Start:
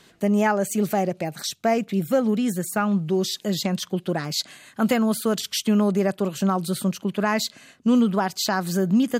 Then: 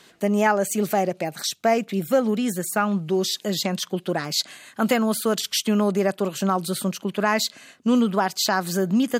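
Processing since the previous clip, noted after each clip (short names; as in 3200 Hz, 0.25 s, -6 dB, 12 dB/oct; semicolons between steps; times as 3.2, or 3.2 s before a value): low shelf 160 Hz -11.5 dB; gain +2.5 dB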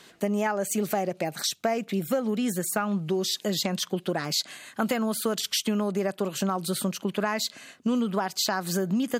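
compressor 5:1, threshold -23 dBFS, peak gain reduction 8.5 dB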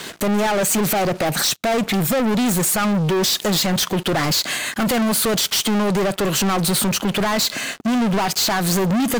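limiter -18.5 dBFS, peak gain reduction 6.5 dB; sample leveller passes 5; gain +2.5 dB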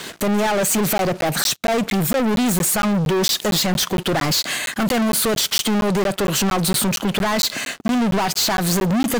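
crackling interface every 0.23 s, samples 512, zero, from 0.98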